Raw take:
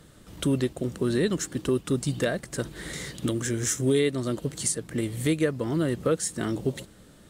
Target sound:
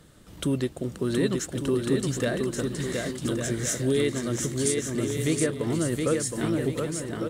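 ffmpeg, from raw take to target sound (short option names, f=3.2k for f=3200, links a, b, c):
-af "aecho=1:1:720|1152|1411|1567|1660:0.631|0.398|0.251|0.158|0.1,volume=-1.5dB"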